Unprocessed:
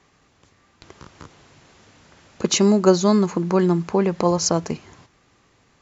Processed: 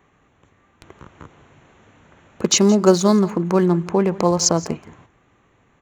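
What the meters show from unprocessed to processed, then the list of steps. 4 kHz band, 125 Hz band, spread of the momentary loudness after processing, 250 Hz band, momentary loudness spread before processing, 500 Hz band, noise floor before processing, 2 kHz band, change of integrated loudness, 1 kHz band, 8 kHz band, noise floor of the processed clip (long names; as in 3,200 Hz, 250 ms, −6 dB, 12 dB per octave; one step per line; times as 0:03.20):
+3.0 dB, +1.5 dB, 10 LU, +1.5 dB, 10 LU, +1.5 dB, −60 dBFS, +1.5 dB, +2.0 dB, +1.5 dB, can't be measured, −60 dBFS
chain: adaptive Wiener filter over 9 samples
high-shelf EQ 6,800 Hz +8 dB
on a send: single-tap delay 170 ms −19.5 dB
on the sum: level +1.5 dB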